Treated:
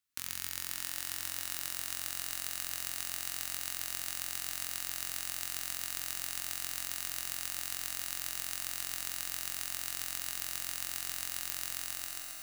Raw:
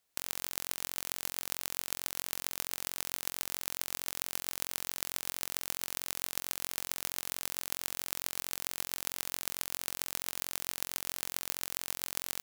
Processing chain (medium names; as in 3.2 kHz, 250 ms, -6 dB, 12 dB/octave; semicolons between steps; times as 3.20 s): fade out at the end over 0.75 s; waveshaping leveller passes 2; high-order bell 560 Hz -10.5 dB; echo that smears into a reverb 557 ms, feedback 65%, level -8 dB; on a send at -4 dB: reverberation RT60 3.0 s, pre-delay 5 ms; on the sum: trim -4 dB